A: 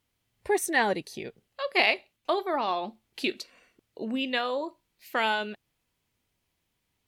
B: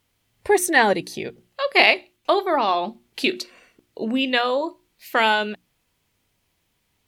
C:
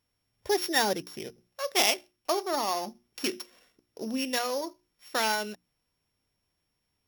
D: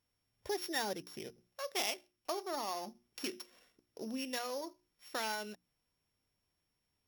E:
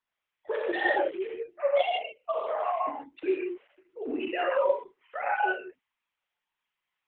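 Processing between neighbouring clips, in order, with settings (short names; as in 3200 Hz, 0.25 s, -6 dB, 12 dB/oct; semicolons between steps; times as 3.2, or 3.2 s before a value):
notches 60/120/180/240/300/360 Hz; gain +8 dB
sample sorter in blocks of 8 samples; gain -9 dB
compressor 1.5:1, threshold -40 dBFS, peak gain reduction 8 dB; gain -4.5 dB
sine-wave speech; non-linear reverb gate 0.2 s flat, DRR -3.5 dB; gain +6.5 dB; Opus 8 kbps 48000 Hz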